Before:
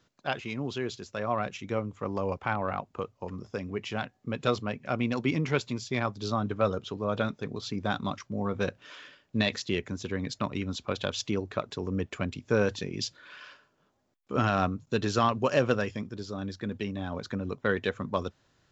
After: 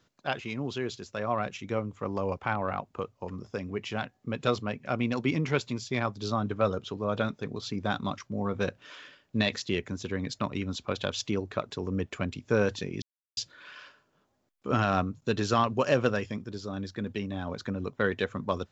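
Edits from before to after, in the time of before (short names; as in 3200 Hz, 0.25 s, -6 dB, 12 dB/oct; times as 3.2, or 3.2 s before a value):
13.02 insert silence 0.35 s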